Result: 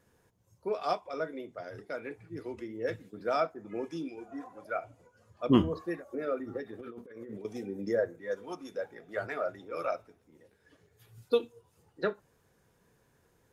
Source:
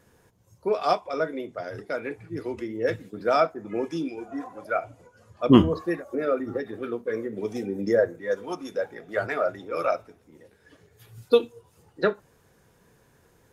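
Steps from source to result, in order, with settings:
0:06.79–0:07.45: compressor whose output falls as the input rises −37 dBFS, ratio −1
level −8 dB

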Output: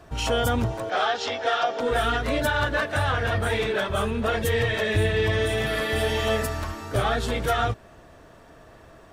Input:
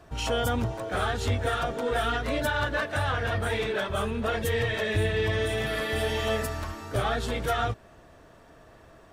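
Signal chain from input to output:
0:00.90–0:01.80: loudspeaker in its box 430–6,100 Hz, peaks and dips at 750 Hz +6 dB, 3,100 Hz +4 dB, 5,300 Hz +7 dB
level +3.5 dB

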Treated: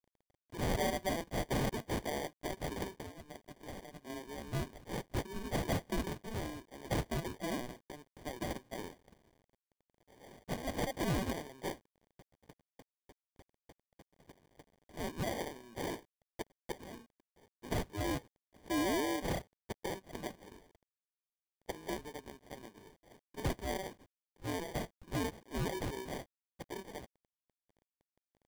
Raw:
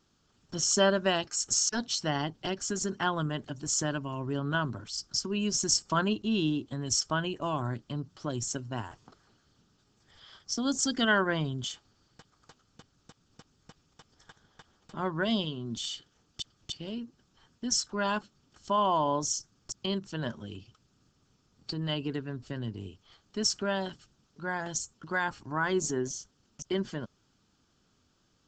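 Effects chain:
high-pass filter 720 Hz 12 dB per octave
0:02.91–0:04.10: downward compressor 8 to 1, threshold −43 dBFS, peak gain reduction 18 dB
decimation without filtering 33×
soft clipping −26.5 dBFS, distortion −11 dB
bit reduction 11 bits
level −1 dB

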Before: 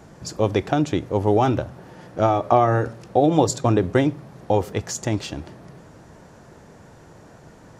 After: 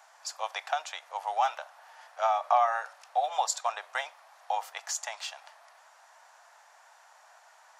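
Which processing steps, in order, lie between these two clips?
Butterworth high-pass 700 Hz 48 dB per octave
level −3.5 dB

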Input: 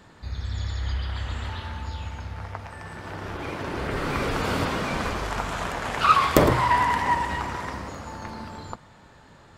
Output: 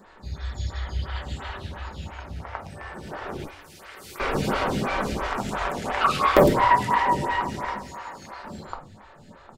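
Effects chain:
0:03.44–0:04.20: first difference
0:07.77–0:08.45: high-pass filter 790 Hz 12 dB per octave
slap from a distant wall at 130 metres, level −15 dB
rectangular room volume 300 cubic metres, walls furnished, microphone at 1.1 metres
phaser with staggered stages 2.9 Hz
level +2.5 dB

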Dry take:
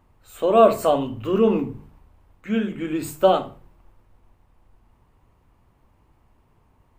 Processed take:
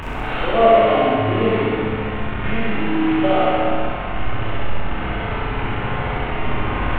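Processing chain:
linear delta modulator 16 kbit/s, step −17 dBFS
on a send: flutter between parallel walls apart 11.3 metres, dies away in 1.4 s
on the sum: four-comb reverb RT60 1.4 s, combs from 25 ms, DRR −4.5 dB
level −7 dB

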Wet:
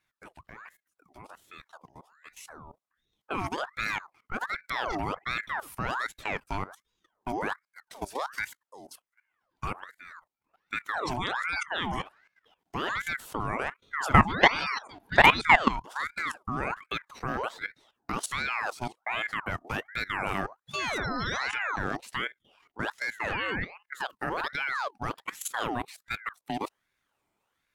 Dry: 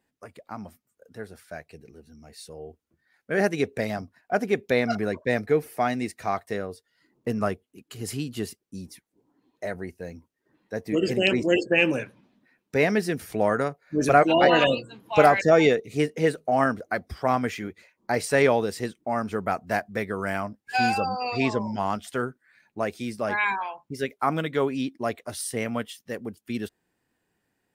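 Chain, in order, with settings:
output level in coarse steps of 16 dB
ring modulator whose carrier an LFO sweeps 1,200 Hz, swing 60%, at 1.3 Hz
level +4 dB

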